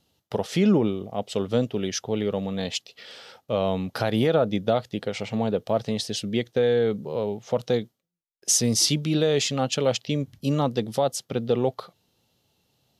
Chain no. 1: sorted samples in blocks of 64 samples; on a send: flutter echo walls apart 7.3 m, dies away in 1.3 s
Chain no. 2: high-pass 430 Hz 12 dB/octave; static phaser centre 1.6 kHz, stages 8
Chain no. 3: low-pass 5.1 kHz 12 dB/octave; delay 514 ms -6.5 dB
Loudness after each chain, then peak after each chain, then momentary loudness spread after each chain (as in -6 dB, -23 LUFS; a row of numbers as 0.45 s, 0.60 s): -20.5 LUFS, -31.0 LUFS, -25.0 LUFS; -3.5 dBFS, -13.5 dBFS, -8.5 dBFS; 11 LU, 10 LU, 10 LU